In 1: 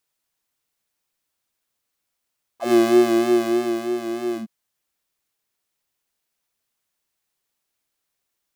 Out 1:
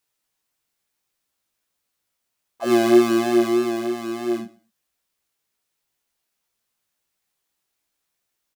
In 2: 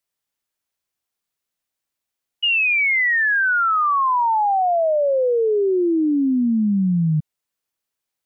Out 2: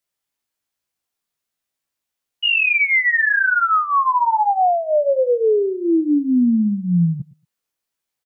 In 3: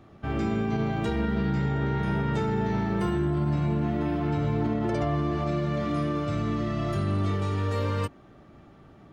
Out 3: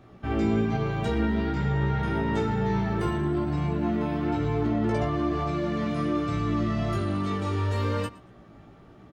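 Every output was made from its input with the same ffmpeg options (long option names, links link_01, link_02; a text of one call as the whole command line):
ffmpeg -i in.wav -af "aecho=1:1:115|230:0.0944|0.017,flanger=delay=16:depth=2.3:speed=1.1,volume=4dB" out.wav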